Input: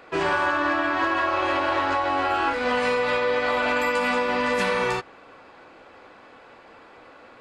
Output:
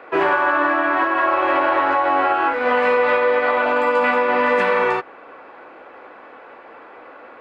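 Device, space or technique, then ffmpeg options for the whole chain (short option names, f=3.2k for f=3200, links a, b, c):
DJ mixer with the lows and highs turned down: -filter_complex "[0:a]asettb=1/sr,asplit=3[a][b][c];[a]atrim=end=3.644[d];[b]atrim=start=3.64:end=4.04,asetpts=PTS-STARTPTS,afade=t=in:d=0.004:c=qsin,afade=t=out:st=0.396:d=0.004:c=qsin,equalizer=f=2k:t=o:w=0.77:g=-7[e];[c]atrim=start=4.036[f];[d][e]acrossfade=d=0.004:c1=hsin:c2=qsin[g];[g][f]acrossfade=d=0.004:c1=qsin:c2=hsin,acrossover=split=260 2600:gain=0.178 1 0.1[h][i][j];[h][i][j]amix=inputs=3:normalize=0,alimiter=limit=-15.5dB:level=0:latency=1:release=366,volume=8dB"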